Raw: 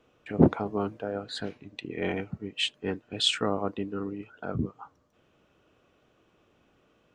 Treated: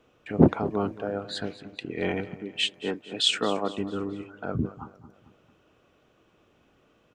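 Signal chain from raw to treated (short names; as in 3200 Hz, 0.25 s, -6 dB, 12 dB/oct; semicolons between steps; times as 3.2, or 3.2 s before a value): 2.28–3.75 HPF 200 Hz 12 dB/oct; on a send: feedback echo 0.223 s, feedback 46%, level -16.5 dB; on the sum: gain +2 dB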